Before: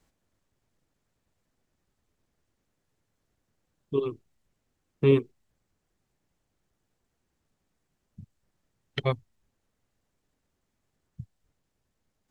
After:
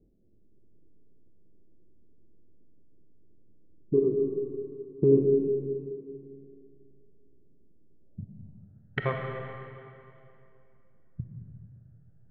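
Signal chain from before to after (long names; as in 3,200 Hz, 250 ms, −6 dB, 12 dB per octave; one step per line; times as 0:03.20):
adaptive Wiener filter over 41 samples
downward compressor 2.5 to 1, threshold −37 dBFS, peak gain reduction 14 dB
low-pass filter sweep 380 Hz → 1,600 Hz, 0:07.88–0:08.82
comb and all-pass reverb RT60 2.7 s, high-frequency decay 0.8×, pre-delay 5 ms, DRR 1.5 dB
level +6.5 dB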